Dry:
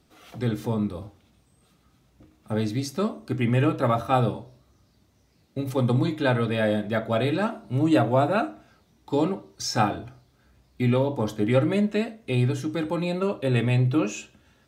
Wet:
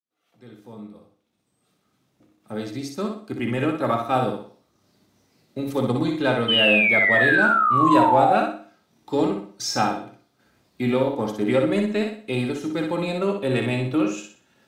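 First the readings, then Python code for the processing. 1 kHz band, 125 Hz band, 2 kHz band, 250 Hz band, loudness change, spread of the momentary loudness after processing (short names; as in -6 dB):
+7.0 dB, -5.5 dB, +12.0 dB, +1.0 dB, +4.0 dB, 15 LU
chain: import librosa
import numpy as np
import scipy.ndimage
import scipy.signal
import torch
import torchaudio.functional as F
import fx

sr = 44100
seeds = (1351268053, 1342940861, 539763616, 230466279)

p1 = fx.fade_in_head(x, sr, length_s=4.5)
p2 = scipy.signal.sosfilt(scipy.signal.butter(2, 170.0, 'highpass', fs=sr, output='sos'), p1)
p3 = fx.transient(p2, sr, attack_db=-1, sustain_db=-6)
p4 = 10.0 ** (-22.5 / 20.0) * np.tanh(p3 / 10.0 ** (-22.5 / 20.0))
p5 = p3 + F.gain(torch.from_numpy(p4), -9.0).numpy()
p6 = fx.spec_paint(p5, sr, seeds[0], shape='fall', start_s=6.48, length_s=1.89, low_hz=720.0, high_hz=3100.0, level_db=-20.0)
y = fx.echo_feedback(p6, sr, ms=61, feedback_pct=37, wet_db=-5)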